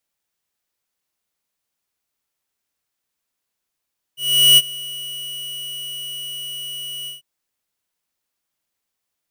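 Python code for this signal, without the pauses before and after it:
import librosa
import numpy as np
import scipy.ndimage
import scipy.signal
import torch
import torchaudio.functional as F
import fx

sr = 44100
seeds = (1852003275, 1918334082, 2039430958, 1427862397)

y = fx.adsr_tone(sr, wave='square', hz=2930.0, attack_ms=403.0, decay_ms=39.0, sustain_db=-21.0, held_s=2.9, release_ms=145.0, level_db=-9.0)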